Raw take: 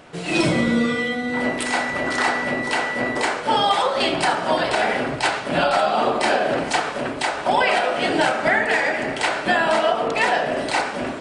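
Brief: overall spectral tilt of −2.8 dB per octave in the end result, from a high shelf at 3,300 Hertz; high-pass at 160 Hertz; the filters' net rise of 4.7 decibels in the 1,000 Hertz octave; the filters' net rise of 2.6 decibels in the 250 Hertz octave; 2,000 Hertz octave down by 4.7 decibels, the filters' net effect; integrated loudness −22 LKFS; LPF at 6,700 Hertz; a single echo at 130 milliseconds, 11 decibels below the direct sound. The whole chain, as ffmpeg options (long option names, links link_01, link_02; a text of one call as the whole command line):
ffmpeg -i in.wav -af "highpass=160,lowpass=6700,equalizer=frequency=250:width_type=o:gain=3.5,equalizer=frequency=1000:width_type=o:gain=8,equalizer=frequency=2000:width_type=o:gain=-7.5,highshelf=frequency=3300:gain=-4.5,aecho=1:1:130:0.282,volume=-3.5dB" out.wav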